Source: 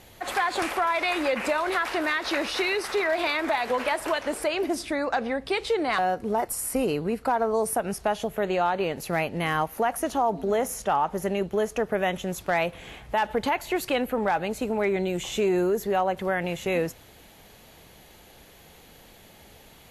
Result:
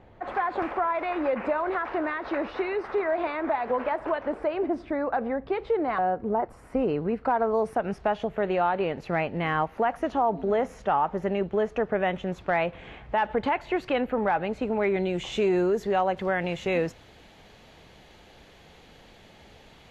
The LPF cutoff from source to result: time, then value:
6.46 s 1300 Hz
7.47 s 2500 Hz
14.48 s 2500 Hz
15.45 s 4800 Hz

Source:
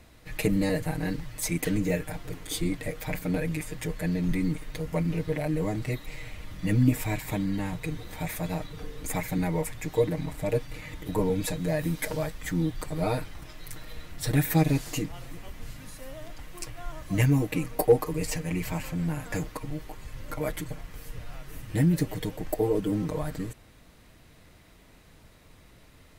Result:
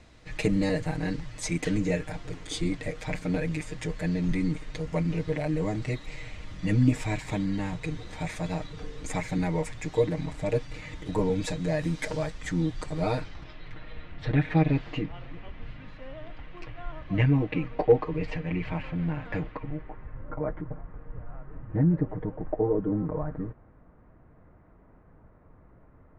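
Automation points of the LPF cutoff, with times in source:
LPF 24 dB/oct
13.11 s 7600 Hz
13.69 s 3200 Hz
19.37 s 3200 Hz
20.31 s 1400 Hz

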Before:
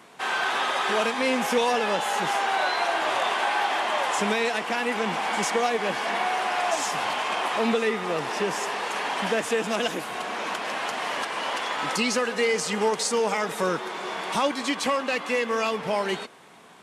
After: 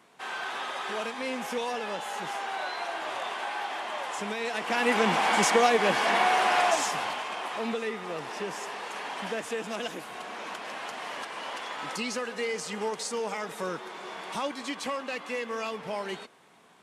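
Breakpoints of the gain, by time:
4.36 s -9 dB
4.9 s +2.5 dB
6.59 s +2.5 dB
7.3 s -8 dB

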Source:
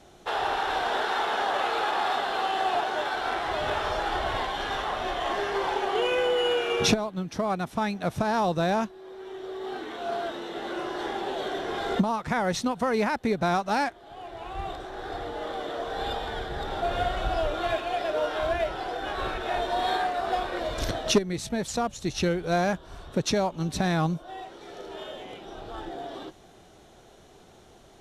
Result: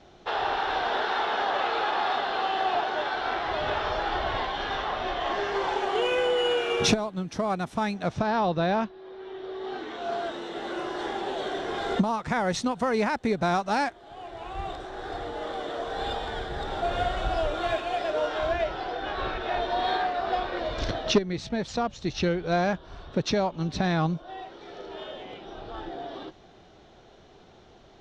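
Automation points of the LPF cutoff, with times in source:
LPF 24 dB/oct
5.2 s 5400 Hz
6.1 s 10000 Hz
7.91 s 10000 Hz
8.32 s 4600 Hz
9.4 s 4600 Hz
10.39 s 9300 Hz
17.92 s 9300 Hz
18.96 s 5300 Hz

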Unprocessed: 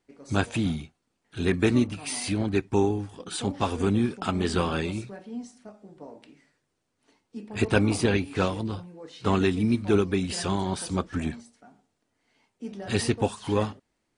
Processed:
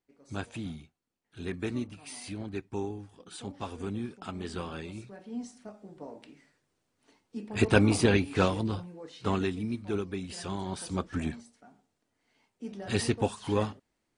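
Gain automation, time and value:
4.88 s -11.5 dB
5.43 s 0 dB
8.9 s 0 dB
9.69 s -10 dB
10.33 s -10 dB
11.15 s -3 dB

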